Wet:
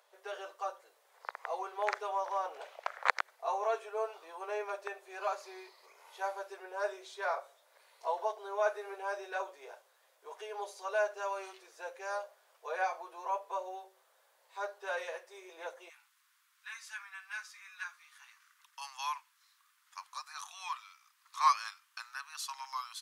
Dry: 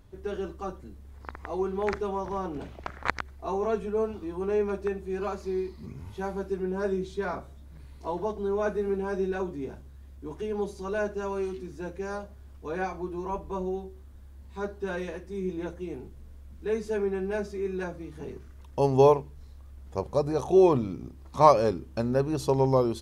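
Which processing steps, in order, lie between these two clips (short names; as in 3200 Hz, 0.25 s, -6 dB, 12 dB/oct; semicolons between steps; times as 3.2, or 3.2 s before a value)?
steep high-pass 510 Hz 48 dB/oct, from 15.88 s 1100 Hz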